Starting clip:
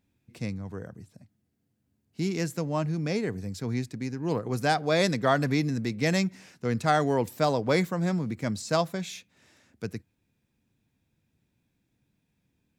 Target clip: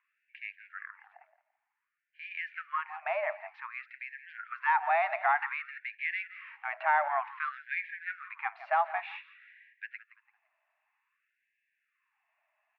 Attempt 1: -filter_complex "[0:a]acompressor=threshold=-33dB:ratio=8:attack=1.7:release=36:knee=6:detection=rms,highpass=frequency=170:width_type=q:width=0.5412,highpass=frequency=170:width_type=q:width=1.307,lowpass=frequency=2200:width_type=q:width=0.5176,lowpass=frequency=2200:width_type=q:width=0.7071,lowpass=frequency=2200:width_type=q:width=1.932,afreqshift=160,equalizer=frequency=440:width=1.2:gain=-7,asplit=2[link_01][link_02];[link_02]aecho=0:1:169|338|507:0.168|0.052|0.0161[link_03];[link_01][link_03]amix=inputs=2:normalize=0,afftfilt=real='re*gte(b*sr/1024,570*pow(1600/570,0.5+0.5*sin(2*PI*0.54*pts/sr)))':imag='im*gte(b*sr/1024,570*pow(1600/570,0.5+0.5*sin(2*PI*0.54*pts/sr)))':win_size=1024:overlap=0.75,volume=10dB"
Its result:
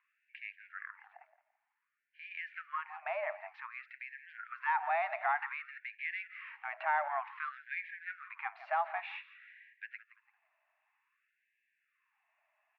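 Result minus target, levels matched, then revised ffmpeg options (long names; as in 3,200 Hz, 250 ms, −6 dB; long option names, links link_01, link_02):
downward compressor: peak gain reduction +5 dB
-filter_complex "[0:a]acompressor=threshold=-27dB:ratio=8:attack=1.7:release=36:knee=6:detection=rms,highpass=frequency=170:width_type=q:width=0.5412,highpass=frequency=170:width_type=q:width=1.307,lowpass=frequency=2200:width_type=q:width=0.5176,lowpass=frequency=2200:width_type=q:width=0.7071,lowpass=frequency=2200:width_type=q:width=1.932,afreqshift=160,equalizer=frequency=440:width=1.2:gain=-7,asplit=2[link_01][link_02];[link_02]aecho=0:1:169|338|507:0.168|0.052|0.0161[link_03];[link_01][link_03]amix=inputs=2:normalize=0,afftfilt=real='re*gte(b*sr/1024,570*pow(1600/570,0.5+0.5*sin(2*PI*0.54*pts/sr)))':imag='im*gte(b*sr/1024,570*pow(1600/570,0.5+0.5*sin(2*PI*0.54*pts/sr)))':win_size=1024:overlap=0.75,volume=10dB"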